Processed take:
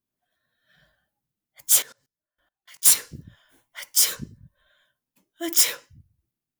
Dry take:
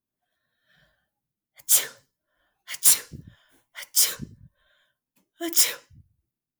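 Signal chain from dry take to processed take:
0:01.82–0:02.83: output level in coarse steps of 24 dB
level +1 dB

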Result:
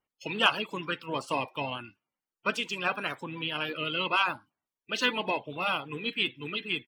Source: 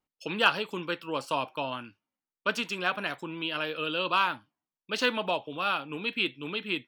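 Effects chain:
spectral magnitudes quantised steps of 30 dB
pitch-shifted copies added −4 semitones −17 dB

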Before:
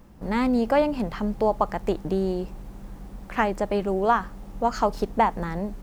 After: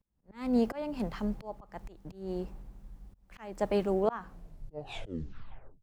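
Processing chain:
turntable brake at the end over 1.65 s
volume swells 250 ms
multiband upward and downward expander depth 70%
level −6.5 dB

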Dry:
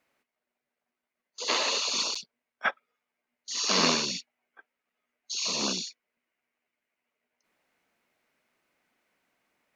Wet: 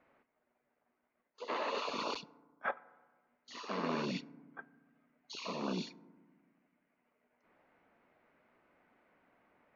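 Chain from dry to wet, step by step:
low-pass filter 1,500 Hz 12 dB per octave
reversed playback
downward compressor 6 to 1, threshold −43 dBFS, peak gain reduction 19.5 dB
reversed playback
feedback delay network reverb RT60 1.4 s, low-frequency decay 1.55×, high-frequency decay 0.3×, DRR 18.5 dB
level +8 dB

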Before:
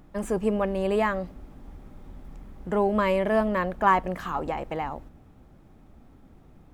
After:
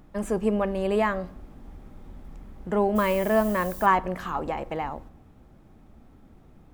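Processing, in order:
on a send at −17 dB: convolution reverb RT60 0.65 s, pre-delay 5 ms
0:02.95–0:03.85: on the sum: background noise violet −42 dBFS

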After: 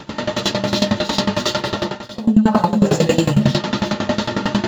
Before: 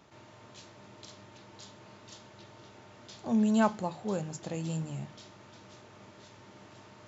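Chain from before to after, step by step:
in parallel at −8.5 dB: bit reduction 7 bits
on the sum: parametric band 2,200 Hz −10 dB 0.28 octaves
convolution reverb RT60 0.70 s, pre-delay 109 ms, DRR −9 dB
multi-voice chorus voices 4, 1.1 Hz, delay 17 ms, depth 3 ms
time stretch by phase vocoder 0.66×
octave-band graphic EQ 125/250/500/2,000/4,000 Hz +6/+5/+4/+9/+7 dB
reversed playback
downward compressor 16 to 1, threshold −29 dBFS, peak gain reduction 32.5 dB
reversed playback
boost into a limiter +28 dB
tremolo with a ramp in dB decaying 11 Hz, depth 18 dB

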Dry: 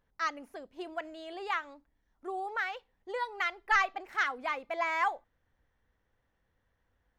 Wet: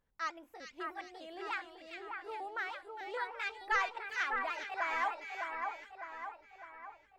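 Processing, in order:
pitch shifter gated in a rhythm +2.5 semitones, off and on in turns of 300 ms
echo with a time of its own for lows and highs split 2,100 Hz, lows 605 ms, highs 404 ms, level −4 dB
level −5.5 dB

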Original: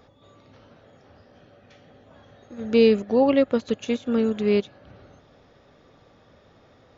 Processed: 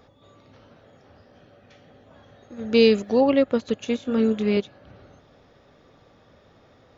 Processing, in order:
0:02.74–0:03.21: high-shelf EQ 3,400 Hz +11 dB
0:03.96–0:04.57: double-tracking delay 23 ms −7 dB

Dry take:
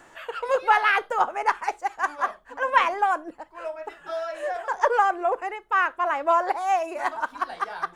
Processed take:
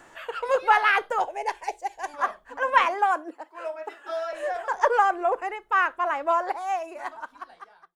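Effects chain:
fade-out on the ending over 2.18 s
0:01.20–0:02.14: phaser with its sweep stopped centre 530 Hz, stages 4
0:02.86–0:04.33: Butterworth high-pass 250 Hz 48 dB per octave

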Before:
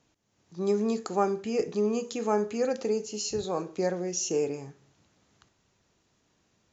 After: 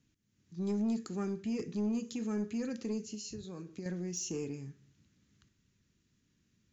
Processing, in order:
drawn EQ curve 240 Hz 0 dB, 750 Hz −23 dB, 1,700 Hz −7 dB
0:03.14–0:03.86: downward compressor 4 to 1, threshold −41 dBFS, peak gain reduction 8.5 dB
soft clipping −26.5 dBFS, distortion −19 dB

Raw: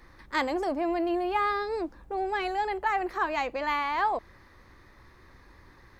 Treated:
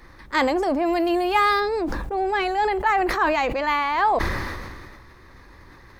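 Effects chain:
0:00.85–0:01.59: high-shelf EQ 3,600 Hz → 2,700 Hz +11.5 dB
level that may fall only so fast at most 30 dB per second
level +6 dB

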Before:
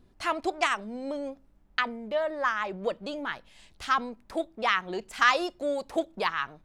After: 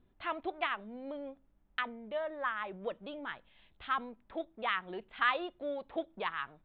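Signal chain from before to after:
elliptic low-pass filter 3,600 Hz, stop band 40 dB
level −7.5 dB

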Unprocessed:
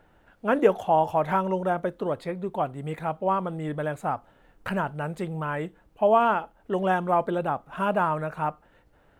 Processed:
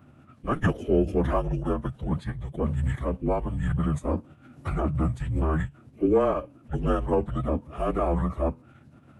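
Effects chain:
low shelf with overshoot 170 Hz +10.5 dB, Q 3
frequency shifter −280 Hz
phase-vocoder pitch shift with formants kept −11 semitones

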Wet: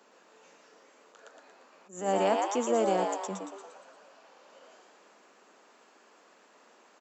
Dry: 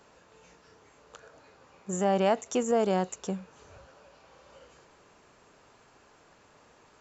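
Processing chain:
Butterworth high-pass 200 Hz 48 dB per octave
on a send: echo with shifted repeats 116 ms, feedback 52%, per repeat +100 Hz, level −4 dB
on the sum: level that may rise only so fast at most 140 dB per second
level −2 dB

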